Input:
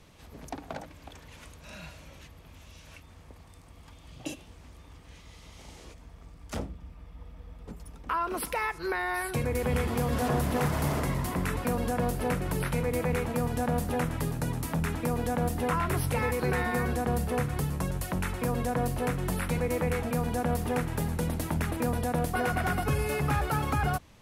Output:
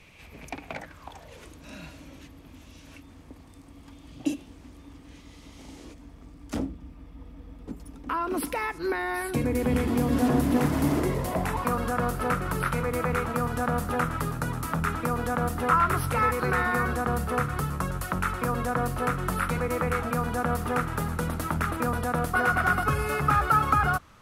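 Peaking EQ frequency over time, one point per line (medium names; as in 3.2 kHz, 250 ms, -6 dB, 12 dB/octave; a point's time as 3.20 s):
peaking EQ +14.5 dB 0.5 oct
0.73 s 2.4 kHz
1.57 s 280 Hz
10.91 s 280 Hz
11.75 s 1.3 kHz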